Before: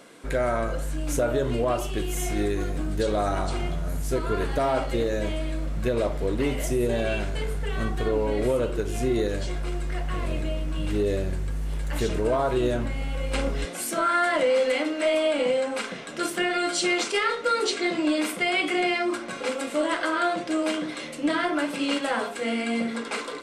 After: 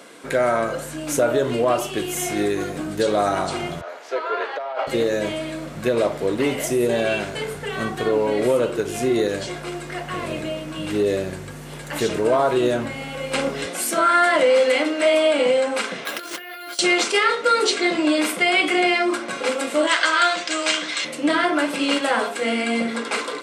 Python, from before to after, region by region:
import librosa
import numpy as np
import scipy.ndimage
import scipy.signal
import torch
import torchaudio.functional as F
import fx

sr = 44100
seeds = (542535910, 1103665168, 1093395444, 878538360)

y = fx.chain(x, sr, fx.highpass(hz=510.0, slope=24),
    fx.air_absorb(metres=230.0),
    fx.over_compress(threshold_db=-29.0, ratio=-0.5), at=(3.81, 4.87))
y = fx.chain(y, sr, fx.highpass(hz=840.0, slope=6),
    fx.over_compress(threshold_db=-39.0, ratio=-1.0),
    fx.resample_bad(factor=3, down='filtered', up='hold'), at=(16.05, 16.79))
y = fx.chain(y, sr, fx.cheby1_bandpass(low_hz=150.0, high_hz=7300.0, order=3),
    fx.tilt_shelf(db=-10.0, hz=1100.0), at=(19.87, 21.05))
y = scipy.signal.sosfilt(scipy.signal.butter(4, 80.0, 'highpass', fs=sr, output='sos'), y)
y = fx.low_shelf(y, sr, hz=140.0, db=-12.0)
y = F.gain(torch.from_numpy(y), 6.5).numpy()